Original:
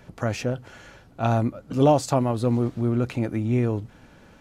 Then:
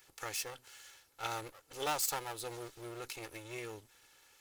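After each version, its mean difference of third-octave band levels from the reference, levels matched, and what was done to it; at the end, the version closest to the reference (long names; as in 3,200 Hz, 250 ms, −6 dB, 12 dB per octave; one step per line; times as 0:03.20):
13.0 dB: lower of the sound and its delayed copy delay 2.3 ms
first-order pre-emphasis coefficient 0.97
level +2.5 dB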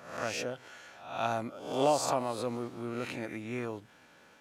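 8.0 dB: peak hold with a rise ahead of every peak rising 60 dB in 0.64 s
high-pass filter 780 Hz 6 dB per octave
level −4.5 dB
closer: second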